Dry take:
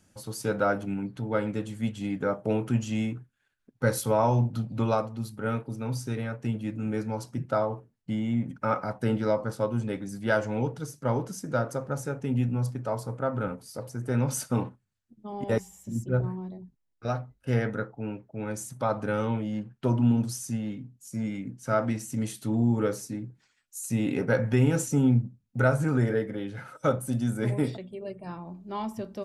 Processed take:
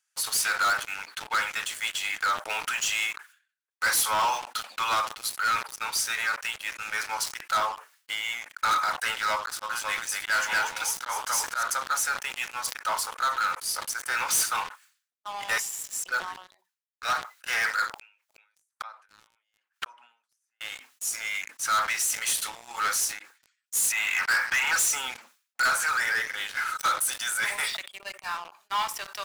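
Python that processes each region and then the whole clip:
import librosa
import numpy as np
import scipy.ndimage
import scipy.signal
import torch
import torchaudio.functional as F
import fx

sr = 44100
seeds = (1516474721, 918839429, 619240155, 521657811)

y = fx.chain(x, sr, fx.echo_single(ms=241, db=-6.5),
    fx.auto_swell(attack_ms=144.0), at=(9.36, 11.63))
y = fx.chain(y, sr, fx.gate_flip(shuts_db=-29.0, range_db=-33),
    fx.band_squash(depth_pct=100), at=(17.98, 20.61))
y = fx.chain(y, sr, fx.highpass(hz=790.0, slope=24),
    fx.leveller(passes=2),
    fx.air_absorb(metres=430.0), at=(23.92, 24.76))
y = scipy.signal.sosfilt(scipy.signal.butter(4, 1200.0, 'highpass', fs=sr, output='sos'), y)
y = fx.leveller(y, sr, passes=5)
y = fx.sustainer(y, sr, db_per_s=130.0)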